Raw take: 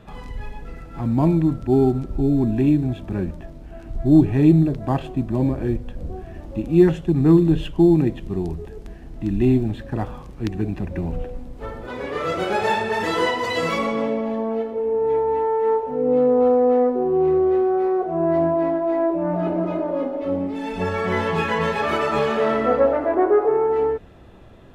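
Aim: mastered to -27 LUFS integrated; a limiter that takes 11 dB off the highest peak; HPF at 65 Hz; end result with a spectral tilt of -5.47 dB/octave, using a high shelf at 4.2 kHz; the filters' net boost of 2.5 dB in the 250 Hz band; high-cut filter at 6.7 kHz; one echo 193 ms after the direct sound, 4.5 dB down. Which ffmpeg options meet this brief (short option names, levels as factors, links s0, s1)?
-af "highpass=65,lowpass=6700,equalizer=f=250:t=o:g=3.5,highshelf=f=4200:g=-6.5,alimiter=limit=0.237:level=0:latency=1,aecho=1:1:193:0.596,volume=0.473"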